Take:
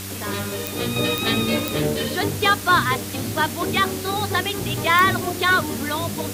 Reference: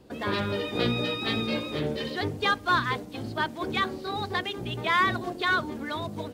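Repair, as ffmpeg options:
-af "adeclick=t=4,bandreject=f=97.5:t=h:w=4,bandreject=f=195:t=h:w=4,bandreject=f=292.5:t=h:w=4,bandreject=f=390:t=h:w=4,afwtdn=0.022,asetnsamples=n=441:p=0,asendcmd='0.96 volume volume -7dB',volume=0dB"

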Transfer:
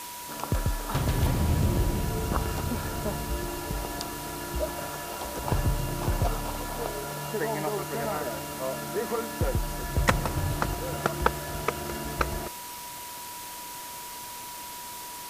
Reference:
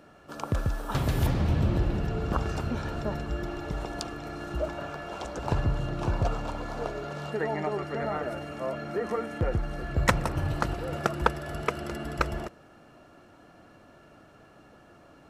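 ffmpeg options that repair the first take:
-af "bandreject=f=970:w=30,afftdn=nr=15:nf=-40"

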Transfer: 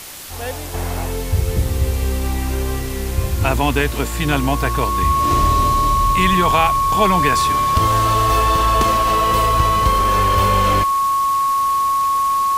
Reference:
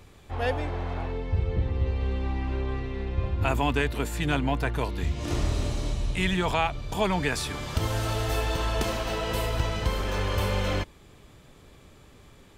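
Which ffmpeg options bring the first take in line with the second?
-af "adeclick=t=4,bandreject=f=1.1k:w=30,afwtdn=0.022,asetnsamples=n=441:p=0,asendcmd='0.74 volume volume -8dB',volume=0dB"

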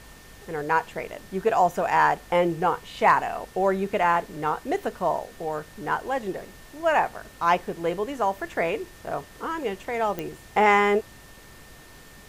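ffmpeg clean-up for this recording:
-af "adeclick=t=4,bandreject=f=49.3:t=h:w=4,bandreject=f=98.6:t=h:w=4,bandreject=f=147.9:t=h:w=4,bandreject=f=197.2:t=h:w=4,bandreject=f=1.8k:w=30,afftdn=nr=21:nf=-47"

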